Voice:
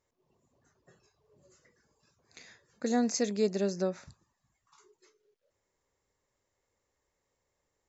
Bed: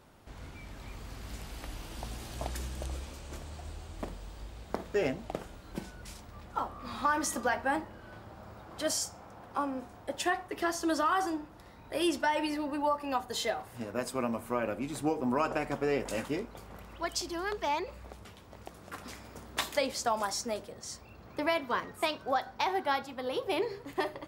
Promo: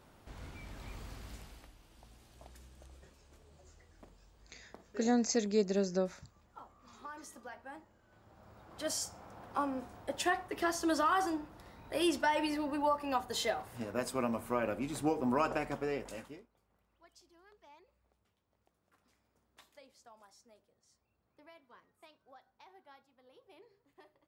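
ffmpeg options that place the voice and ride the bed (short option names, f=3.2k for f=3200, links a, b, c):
-filter_complex "[0:a]adelay=2150,volume=-1.5dB[a];[1:a]volume=15dB,afade=t=out:st=1:d=0.73:silence=0.149624,afade=t=in:st=8.08:d=1.35:silence=0.141254,afade=t=out:st=15.44:d=1.04:silence=0.0446684[b];[a][b]amix=inputs=2:normalize=0"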